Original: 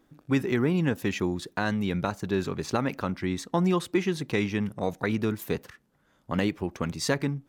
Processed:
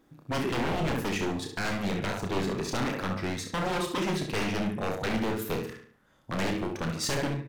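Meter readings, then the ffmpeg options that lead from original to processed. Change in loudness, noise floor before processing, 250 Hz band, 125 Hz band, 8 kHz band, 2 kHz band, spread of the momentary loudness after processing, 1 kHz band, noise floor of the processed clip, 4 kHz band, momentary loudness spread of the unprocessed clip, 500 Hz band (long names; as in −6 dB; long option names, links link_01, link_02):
−2.5 dB, −67 dBFS, −4.0 dB, −3.5 dB, +2.0 dB, −0.5 dB, 4 LU, +1.0 dB, −64 dBFS, +2.5 dB, 6 LU, −2.5 dB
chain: -filter_complex "[0:a]asplit=2[link_01][link_02];[link_02]adelay=72,lowpass=frequency=4800:poles=1,volume=-7dB,asplit=2[link_03][link_04];[link_04]adelay=72,lowpass=frequency=4800:poles=1,volume=0.43,asplit=2[link_05][link_06];[link_06]adelay=72,lowpass=frequency=4800:poles=1,volume=0.43,asplit=2[link_07][link_08];[link_08]adelay=72,lowpass=frequency=4800:poles=1,volume=0.43,asplit=2[link_09][link_10];[link_10]adelay=72,lowpass=frequency=4800:poles=1,volume=0.43[link_11];[link_03][link_05][link_07][link_09][link_11]amix=inputs=5:normalize=0[link_12];[link_01][link_12]amix=inputs=2:normalize=0,aeval=exprs='0.0596*(abs(mod(val(0)/0.0596+3,4)-2)-1)':channel_layout=same,asplit=2[link_13][link_14];[link_14]aecho=0:1:31|63:0.473|0.299[link_15];[link_13][link_15]amix=inputs=2:normalize=0"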